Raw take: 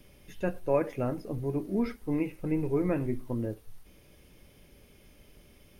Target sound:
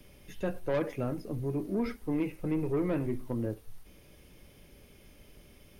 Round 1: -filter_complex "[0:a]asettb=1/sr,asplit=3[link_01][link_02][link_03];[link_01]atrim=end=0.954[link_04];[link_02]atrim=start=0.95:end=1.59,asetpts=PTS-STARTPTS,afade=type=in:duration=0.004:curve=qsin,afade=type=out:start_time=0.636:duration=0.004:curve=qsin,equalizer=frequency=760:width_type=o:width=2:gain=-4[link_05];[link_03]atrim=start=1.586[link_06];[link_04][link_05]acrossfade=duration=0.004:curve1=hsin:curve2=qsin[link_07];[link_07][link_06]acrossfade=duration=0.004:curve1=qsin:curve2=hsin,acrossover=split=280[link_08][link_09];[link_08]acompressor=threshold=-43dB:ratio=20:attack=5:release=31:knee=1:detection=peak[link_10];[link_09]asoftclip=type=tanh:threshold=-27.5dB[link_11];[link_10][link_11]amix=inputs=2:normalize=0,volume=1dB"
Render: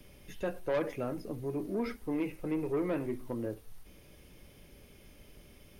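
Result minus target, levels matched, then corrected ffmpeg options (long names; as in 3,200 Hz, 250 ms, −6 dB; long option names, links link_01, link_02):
downward compressor: peak gain reduction +8.5 dB
-filter_complex "[0:a]asettb=1/sr,asplit=3[link_01][link_02][link_03];[link_01]atrim=end=0.954[link_04];[link_02]atrim=start=0.95:end=1.59,asetpts=PTS-STARTPTS,afade=type=in:duration=0.004:curve=qsin,afade=type=out:start_time=0.636:duration=0.004:curve=qsin,equalizer=frequency=760:width_type=o:width=2:gain=-4[link_05];[link_03]atrim=start=1.586[link_06];[link_04][link_05]acrossfade=duration=0.004:curve1=hsin:curve2=qsin[link_07];[link_07][link_06]acrossfade=duration=0.004:curve1=qsin:curve2=hsin,acrossover=split=280[link_08][link_09];[link_08]acompressor=threshold=-34dB:ratio=20:attack=5:release=31:knee=1:detection=peak[link_10];[link_09]asoftclip=type=tanh:threshold=-27.5dB[link_11];[link_10][link_11]amix=inputs=2:normalize=0,volume=1dB"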